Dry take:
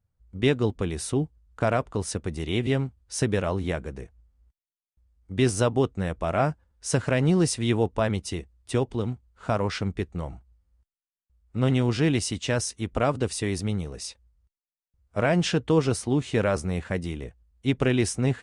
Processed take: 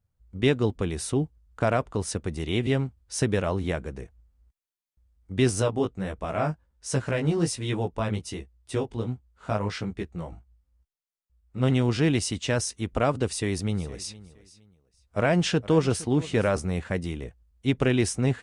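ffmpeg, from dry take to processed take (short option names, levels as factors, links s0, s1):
-filter_complex "[0:a]asplit=3[s0][s1][s2];[s0]afade=t=out:st=5.6:d=0.02[s3];[s1]flanger=delay=15:depth=4.2:speed=1.3,afade=t=in:st=5.6:d=0.02,afade=t=out:st=11.62:d=0.02[s4];[s2]afade=t=in:st=11.62:d=0.02[s5];[s3][s4][s5]amix=inputs=3:normalize=0,asettb=1/sr,asplit=3[s6][s7][s8];[s6]atrim=end=13.274[s9];[s7]atrim=start=13.27:end=16.59,asetpts=PTS-STARTPTS,afade=t=in:d=0.004:c=qsin,afade=t=out:st=3.316:d=0.004:c=qsin,aecho=1:1:464|928:0.112|0.0292,atrim=end_sample=146412[s10];[s8]atrim=start=16.586[s11];[s9][s10]acrossfade=d=0.004:c1=hsin:c2=qsin[s12];[s12][s11]acrossfade=d=0.004:c1=qsin:c2=hsin"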